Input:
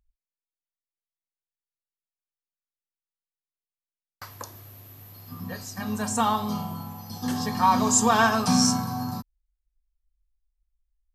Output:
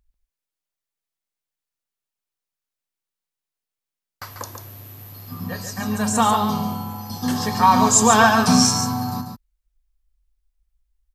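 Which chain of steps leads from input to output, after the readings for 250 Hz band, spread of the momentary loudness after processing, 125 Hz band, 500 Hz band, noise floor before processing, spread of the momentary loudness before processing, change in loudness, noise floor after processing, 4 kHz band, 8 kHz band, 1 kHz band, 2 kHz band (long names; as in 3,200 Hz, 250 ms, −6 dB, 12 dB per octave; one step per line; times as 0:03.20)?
+5.5 dB, 21 LU, +6.0 dB, +6.5 dB, below −85 dBFS, 20 LU, +6.0 dB, below −85 dBFS, +6.5 dB, +6.5 dB, +6.0 dB, +6.5 dB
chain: single-tap delay 142 ms −7 dB
level +5.5 dB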